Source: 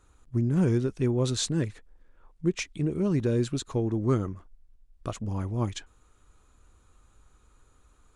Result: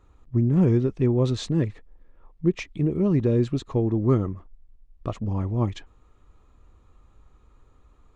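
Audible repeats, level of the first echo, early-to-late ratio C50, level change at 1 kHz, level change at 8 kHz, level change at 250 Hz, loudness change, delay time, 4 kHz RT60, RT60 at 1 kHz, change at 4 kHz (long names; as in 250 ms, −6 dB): no echo audible, no echo audible, no reverb audible, +2.5 dB, can't be measured, +4.5 dB, +4.0 dB, no echo audible, no reverb audible, no reverb audible, −3.5 dB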